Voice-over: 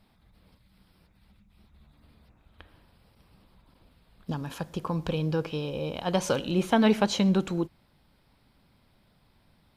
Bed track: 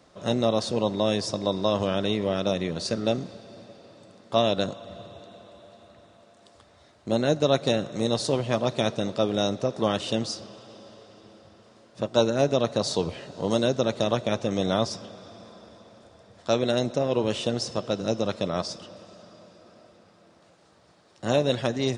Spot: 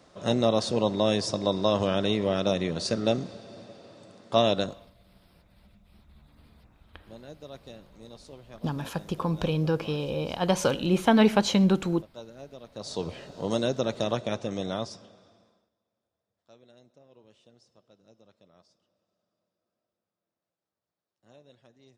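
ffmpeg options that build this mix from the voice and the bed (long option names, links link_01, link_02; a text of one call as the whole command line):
ffmpeg -i stem1.wav -i stem2.wav -filter_complex "[0:a]adelay=4350,volume=2dB[link_01];[1:a]volume=19dB,afade=type=out:start_time=4.53:duration=0.37:silence=0.0749894,afade=type=in:start_time=12.71:duration=0.4:silence=0.112202,afade=type=out:start_time=14.16:duration=1.54:silence=0.0354813[link_02];[link_01][link_02]amix=inputs=2:normalize=0" out.wav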